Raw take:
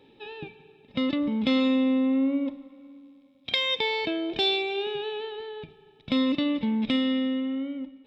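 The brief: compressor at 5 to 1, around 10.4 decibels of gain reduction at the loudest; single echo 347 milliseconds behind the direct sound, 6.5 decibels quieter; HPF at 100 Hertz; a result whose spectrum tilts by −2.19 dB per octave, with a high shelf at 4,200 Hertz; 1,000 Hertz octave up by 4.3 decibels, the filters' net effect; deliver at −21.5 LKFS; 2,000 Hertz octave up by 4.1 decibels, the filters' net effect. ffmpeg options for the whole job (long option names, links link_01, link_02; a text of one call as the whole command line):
ffmpeg -i in.wav -af "highpass=100,equalizer=frequency=1000:width_type=o:gain=4.5,equalizer=frequency=2000:width_type=o:gain=6,highshelf=frequency=4200:gain=-8.5,acompressor=threshold=-31dB:ratio=5,aecho=1:1:347:0.473,volume=12dB" out.wav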